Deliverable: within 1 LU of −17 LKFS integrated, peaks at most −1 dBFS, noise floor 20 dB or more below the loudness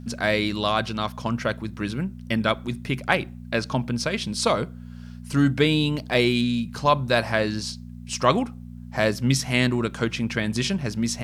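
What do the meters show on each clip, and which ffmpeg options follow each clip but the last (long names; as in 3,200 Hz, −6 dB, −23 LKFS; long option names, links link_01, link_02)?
mains hum 60 Hz; hum harmonics up to 240 Hz; level of the hum −36 dBFS; integrated loudness −24.0 LKFS; sample peak −4.0 dBFS; target loudness −17.0 LKFS
→ -af "bandreject=frequency=60:width_type=h:width=4,bandreject=frequency=120:width_type=h:width=4,bandreject=frequency=180:width_type=h:width=4,bandreject=frequency=240:width_type=h:width=4"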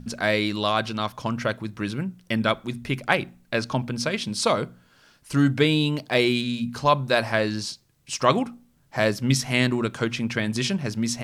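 mains hum none found; integrated loudness −24.5 LKFS; sample peak −4.0 dBFS; target loudness −17.0 LKFS
→ -af "volume=7.5dB,alimiter=limit=-1dB:level=0:latency=1"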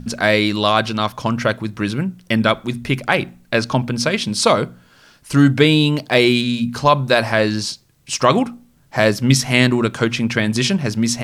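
integrated loudness −17.5 LKFS; sample peak −1.0 dBFS; background noise floor −53 dBFS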